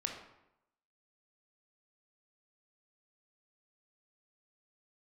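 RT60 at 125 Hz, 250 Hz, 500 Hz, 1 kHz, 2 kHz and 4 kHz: 0.85, 0.85, 0.85, 0.85, 0.75, 0.60 seconds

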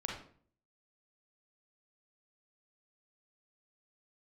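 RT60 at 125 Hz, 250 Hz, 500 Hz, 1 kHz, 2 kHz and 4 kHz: 0.70, 0.65, 0.55, 0.45, 0.40, 0.35 seconds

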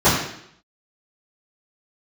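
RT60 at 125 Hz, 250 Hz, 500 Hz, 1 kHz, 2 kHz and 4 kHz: 0.70, 0.75, 0.75, 0.70, 0.70, 0.70 seconds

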